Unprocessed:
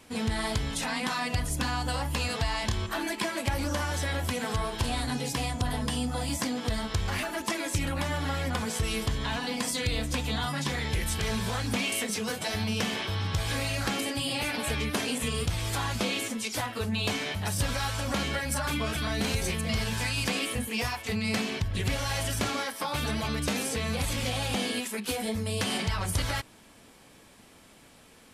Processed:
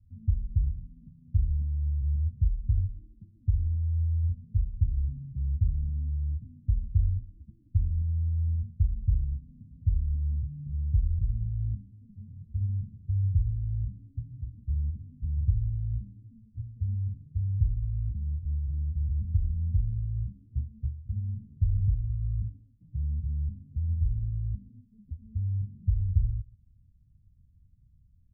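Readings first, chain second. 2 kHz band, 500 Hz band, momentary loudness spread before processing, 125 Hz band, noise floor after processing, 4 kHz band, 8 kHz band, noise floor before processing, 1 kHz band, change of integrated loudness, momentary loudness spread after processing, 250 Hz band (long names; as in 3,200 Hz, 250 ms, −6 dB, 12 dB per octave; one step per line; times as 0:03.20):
below −40 dB, below −40 dB, 2 LU, +4.5 dB, −60 dBFS, below −40 dB, below −40 dB, −55 dBFS, below −40 dB, −1.0 dB, 10 LU, −15.5 dB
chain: inverse Chebyshev low-pass filter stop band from 640 Hz, stop band 80 dB
single-tap delay 131 ms −22.5 dB
level +7 dB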